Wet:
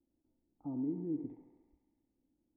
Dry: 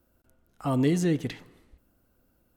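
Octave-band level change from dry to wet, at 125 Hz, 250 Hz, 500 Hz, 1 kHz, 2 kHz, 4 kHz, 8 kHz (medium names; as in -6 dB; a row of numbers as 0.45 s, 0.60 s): -19.5 dB, -11.0 dB, -16.5 dB, -22.5 dB, under -40 dB, under -40 dB, under -35 dB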